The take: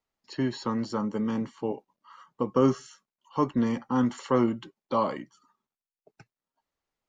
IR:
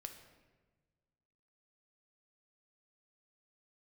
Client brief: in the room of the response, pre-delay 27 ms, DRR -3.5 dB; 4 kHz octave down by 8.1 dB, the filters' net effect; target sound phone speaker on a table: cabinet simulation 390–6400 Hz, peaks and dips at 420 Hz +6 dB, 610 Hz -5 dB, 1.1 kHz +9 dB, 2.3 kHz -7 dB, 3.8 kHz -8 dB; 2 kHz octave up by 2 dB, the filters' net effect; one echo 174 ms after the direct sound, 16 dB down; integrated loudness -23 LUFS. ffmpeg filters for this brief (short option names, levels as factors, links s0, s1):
-filter_complex "[0:a]equalizer=f=2000:t=o:g=5.5,equalizer=f=4000:t=o:g=-9,aecho=1:1:174:0.158,asplit=2[s0][s1];[1:a]atrim=start_sample=2205,adelay=27[s2];[s1][s2]afir=irnorm=-1:irlink=0,volume=2.51[s3];[s0][s3]amix=inputs=2:normalize=0,highpass=f=390:w=0.5412,highpass=f=390:w=1.3066,equalizer=f=420:t=q:w=4:g=6,equalizer=f=610:t=q:w=4:g=-5,equalizer=f=1100:t=q:w=4:g=9,equalizer=f=2300:t=q:w=4:g=-7,equalizer=f=3800:t=q:w=4:g=-8,lowpass=f=6400:w=0.5412,lowpass=f=6400:w=1.3066,volume=1.12"